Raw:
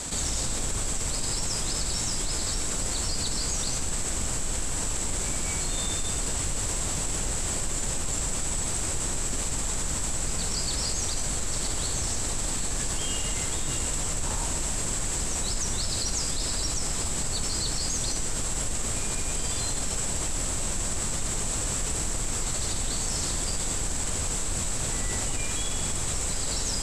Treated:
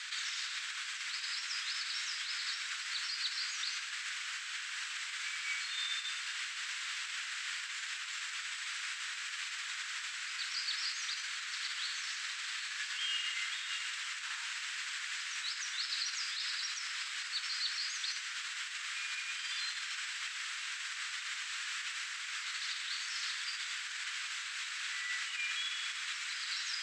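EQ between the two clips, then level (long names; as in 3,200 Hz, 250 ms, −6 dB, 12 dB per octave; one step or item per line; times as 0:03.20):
Butterworth high-pass 1,500 Hz 36 dB per octave
high-frequency loss of the air 260 metres
+6.0 dB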